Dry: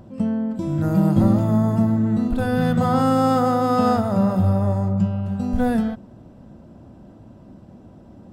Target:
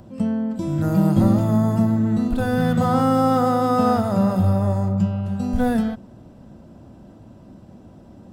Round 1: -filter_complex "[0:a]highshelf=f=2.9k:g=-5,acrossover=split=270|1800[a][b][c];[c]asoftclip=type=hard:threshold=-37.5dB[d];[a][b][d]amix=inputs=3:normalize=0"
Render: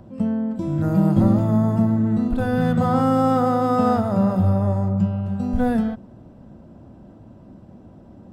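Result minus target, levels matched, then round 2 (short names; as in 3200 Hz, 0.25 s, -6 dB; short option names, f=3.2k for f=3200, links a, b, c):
8000 Hz band -6.5 dB
-filter_complex "[0:a]highshelf=f=2.9k:g=5,acrossover=split=270|1800[a][b][c];[c]asoftclip=type=hard:threshold=-37.5dB[d];[a][b][d]amix=inputs=3:normalize=0"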